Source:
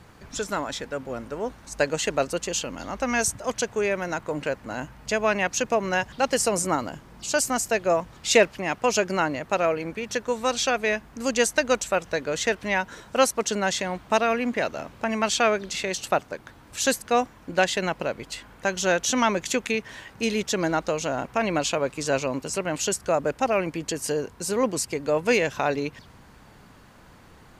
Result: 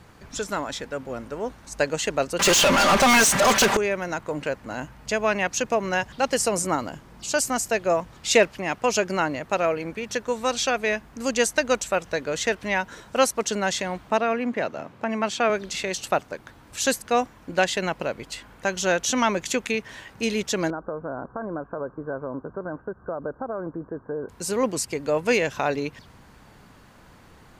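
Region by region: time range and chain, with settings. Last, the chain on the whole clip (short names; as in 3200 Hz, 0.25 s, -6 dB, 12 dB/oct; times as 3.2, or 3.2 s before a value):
2.39–3.77 comb 5.1 ms, depth 87% + overdrive pedal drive 36 dB, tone 5800 Hz, clips at -10 dBFS
14.1–15.5 HPF 100 Hz 24 dB/oct + high shelf 3200 Hz -10 dB
20.7–24.29 compressor 4:1, threshold -25 dBFS + rippled Chebyshev low-pass 1600 Hz, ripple 3 dB
whole clip: dry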